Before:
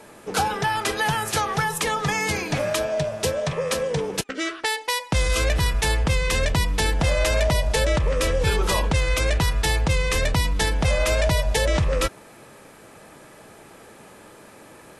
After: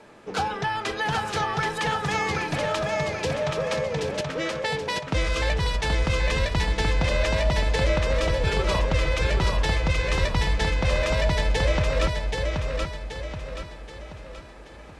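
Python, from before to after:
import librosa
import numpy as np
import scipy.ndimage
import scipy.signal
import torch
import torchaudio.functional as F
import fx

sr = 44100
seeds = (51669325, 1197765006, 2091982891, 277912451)

p1 = scipy.signal.sosfilt(scipy.signal.butter(2, 5100.0, 'lowpass', fs=sr, output='sos'), x)
p2 = p1 + fx.echo_feedback(p1, sr, ms=778, feedback_pct=45, wet_db=-3.5, dry=0)
y = p2 * librosa.db_to_amplitude(-3.5)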